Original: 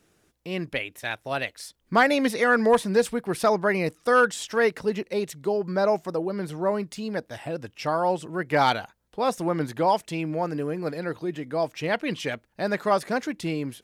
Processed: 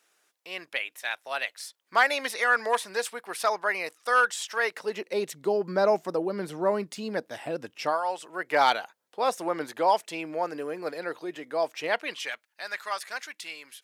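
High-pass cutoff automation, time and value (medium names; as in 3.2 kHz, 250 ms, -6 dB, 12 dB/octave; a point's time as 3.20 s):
4.62 s 820 Hz
5.34 s 230 Hz
7.83 s 230 Hz
8.02 s 960 Hz
8.59 s 450 Hz
11.86 s 450 Hz
12.46 s 1.5 kHz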